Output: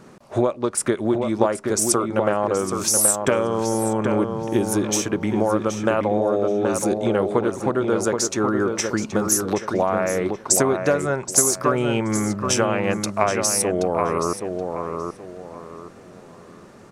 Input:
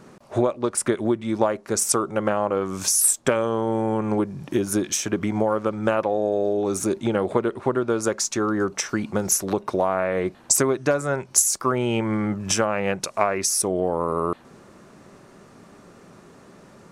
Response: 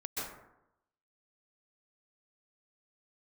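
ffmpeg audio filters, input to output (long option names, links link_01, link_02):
-filter_complex "[0:a]asplit=2[link_01][link_02];[link_02]adelay=776,lowpass=frequency=2800:poles=1,volume=-5dB,asplit=2[link_03][link_04];[link_04]adelay=776,lowpass=frequency=2800:poles=1,volume=0.31,asplit=2[link_05][link_06];[link_06]adelay=776,lowpass=frequency=2800:poles=1,volume=0.31,asplit=2[link_07][link_08];[link_08]adelay=776,lowpass=frequency=2800:poles=1,volume=0.31[link_09];[link_01][link_03][link_05][link_07][link_09]amix=inputs=5:normalize=0,volume=1dB"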